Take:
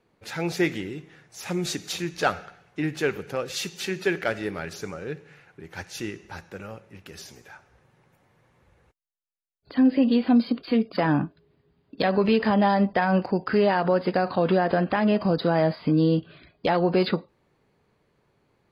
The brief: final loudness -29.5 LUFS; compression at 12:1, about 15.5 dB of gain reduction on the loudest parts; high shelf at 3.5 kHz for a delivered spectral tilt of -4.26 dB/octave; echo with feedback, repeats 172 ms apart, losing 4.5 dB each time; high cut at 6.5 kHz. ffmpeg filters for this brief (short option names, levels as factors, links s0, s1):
-af "lowpass=6500,highshelf=f=3500:g=6.5,acompressor=threshold=0.0282:ratio=12,aecho=1:1:172|344|516|688|860|1032|1204|1376|1548:0.596|0.357|0.214|0.129|0.0772|0.0463|0.0278|0.0167|0.01,volume=1.88"